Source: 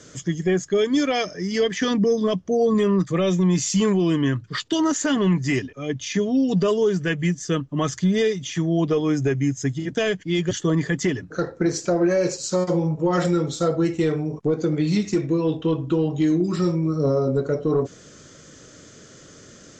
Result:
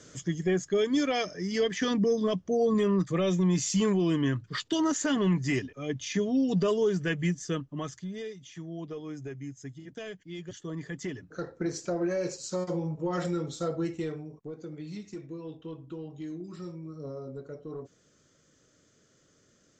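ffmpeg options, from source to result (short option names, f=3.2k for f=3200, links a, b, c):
-af "volume=2dB,afade=t=out:st=7.3:d=0.75:silence=0.251189,afade=t=in:st=10.59:d=1.07:silence=0.398107,afade=t=out:st=13.85:d=0.53:silence=0.354813"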